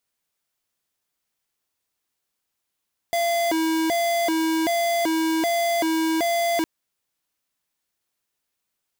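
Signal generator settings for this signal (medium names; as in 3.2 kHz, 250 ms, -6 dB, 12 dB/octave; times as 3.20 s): siren hi-lo 322–683 Hz 1.3 per s square -22 dBFS 3.51 s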